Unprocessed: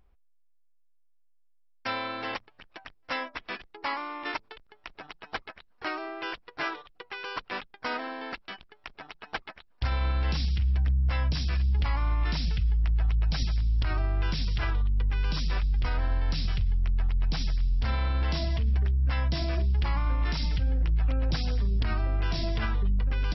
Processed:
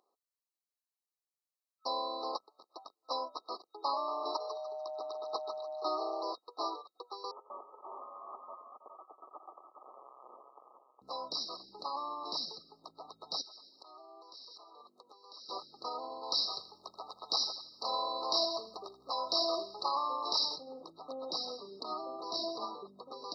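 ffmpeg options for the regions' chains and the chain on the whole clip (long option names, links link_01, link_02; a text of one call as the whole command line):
ffmpeg -i in.wav -filter_complex "[0:a]asettb=1/sr,asplit=3[link_01][link_02][link_03];[link_01]atrim=end=3.934[link_04];[link_02]atrim=start=3.93:end=6.32,asetpts=PTS-STARTPTS,afade=type=in:duration=0.004:curve=qsin,afade=type=out:start_time=2.386:duration=0.004:curve=qsin,aeval=exprs='val(0)+0.0126*sin(2*PI*620*n/s)':channel_layout=same,asplit=5[link_05][link_06][link_07][link_08][link_09];[link_06]adelay=147,afreqshift=140,volume=-9dB[link_10];[link_07]adelay=294,afreqshift=280,volume=-19.2dB[link_11];[link_08]adelay=441,afreqshift=420,volume=-29.3dB[link_12];[link_09]adelay=588,afreqshift=560,volume=-39.5dB[link_13];[link_05][link_10][link_11][link_12][link_13]amix=inputs=5:normalize=0,atrim=end_sample=105399[link_14];[link_03]atrim=start=6.316[link_15];[link_04][link_14]acrossfade=duration=0.004:curve1=hsin:curve2=qsin[link_16];[link_16][link_15]acrossfade=duration=0.004:curve1=qsin:curve2=hsin,asettb=1/sr,asplit=3[link_17][link_18][link_19];[link_17]atrim=end=7.314[link_20];[link_18]atrim=start=7.31:end=11.02,asetpts=PTS-STARTPTS,afade=type=in:duration=0.004:curve=qsin,afade=type=out:start_time=3.706:duration=0.004:curve=qsin,asoftclip=type=hard:threshold=-35.5dB,aecho=1:1:91|137|322|414:0.224|0.178|0.224|0.473,atrim=end_sample=163611,lowpass=frequency=2500:width_type=q:width=0.5098,lowpass=frequency=2500:width_type=q:width=0.6013,lowpass=frequency=2500:width_type=q:width=0.9,lowpass=frequency=2500:width_type=q:width=2.563,afreqshift=-2900[link_21];[link_19]atrim=start=11.016[link_22];[link_20][link_21]acrossfade=duration=0.004:curve1=hsin:curve2=qsin[link_23];[link_23][link_22]acrossfade=duration=0.004:curve1=qsin:curve2=hsin,asettb=1/sr,asplit=3[link_24][link_25][link_26];[link_24]atrim=end=13.414[link_27];[link_25]atrim=start=13.41:end=15.49,asetpts=PTS-STARTPTS,afade=type=in:duration=0.004:curve=qsin,afade=type=out:start_time=2.076:duration=0.004:curve=qsin,highpass=380,acompressor=threshold=-47dB:ratio=16:attack=3.2:release=140:knee=1:detection=peak[link_28];[link_26]atrim=start=15.486[link_29];[link_27][link_28]acrossfade=duration=0.004:curve1=hsin:curve2=qsin[link_30];[link_30][link_29]acrossfade=duration=0.004:curve1=qsin:curve2=hsin,asettb=1/sr,asplit=3[link_31][link_32][link_33];[link_31]atrim=end=16.234[link_34];[link_32]atrim=start=16.23:end=20.56,asetpts=PTS-STARTPTS,afade=type=in:duration=0.004:curve=qsin,afade=type=out:start_time=4.326:duration=0.004:curve=qsin,equalizer=frequency=220:width_type=o:width=1.9:gain=-9.5,acontrast=63,aecho=1:1:81|162|243:0.178|0.0676|0.0257,atrim=end_sample=190953[link_35];[link_33]atrim=start=20.556[link_36];[link_34][link_35]acrossfade=duration=0.004:curve1=hsin:curve2=qsin[link_37];[link_37][link_36]acrossfade=duration=0.004:curve1=qsin:curve2=hsin,afftfilt=real='re*(1-between(b*sr/4096,1300,3800))':imag='im*(1-between(b*sr/4096,1300,3800))':win_size=4096:overlap=0.75,highpass=frequency=360:width=0.5412,highpass=frequency=360:width=1.3066,equalizer=frequency=2700:width_type=o:width=0.8:gain=12.5,volume=-1dB" out.wav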